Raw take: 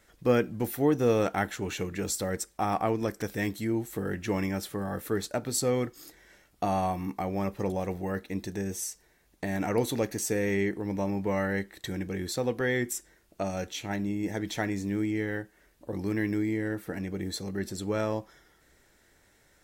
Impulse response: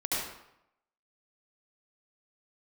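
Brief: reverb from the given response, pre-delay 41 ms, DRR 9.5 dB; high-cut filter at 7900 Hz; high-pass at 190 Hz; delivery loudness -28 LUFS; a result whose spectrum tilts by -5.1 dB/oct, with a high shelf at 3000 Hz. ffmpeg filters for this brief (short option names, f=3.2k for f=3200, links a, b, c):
-filter_complex "[0:a]highpass=190,lowpass=7.9k,highshelf=f=3k:g=-5.5,asplit=2[a][b];[1:a]atrim=start_sample=2205,adelay=41[c];[b][c]afir=irnorm=-1:irlink=0,volume=-17dB[d];[a][d]amix=inputs=2:normalize=0,volume=3.5dB"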